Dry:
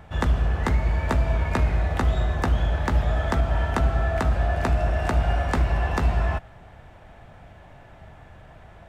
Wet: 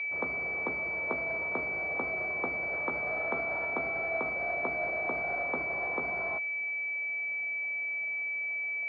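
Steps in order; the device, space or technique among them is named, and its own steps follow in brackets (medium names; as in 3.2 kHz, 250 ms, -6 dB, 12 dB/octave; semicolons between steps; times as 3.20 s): 2.68–3.69 s: treble shelf 2.1 kHz +9.5 dB; toy sound module (decimation joined by straight lines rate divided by 8×; class-D stage that switches slowly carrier 2.3 kHz; cabinet simulation 520–3800 Hz, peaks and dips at 600 Hz -3 dB, 870 Hz -8 dB, 1.7 kHz -7 dB, 2.9 kHz -6 dB)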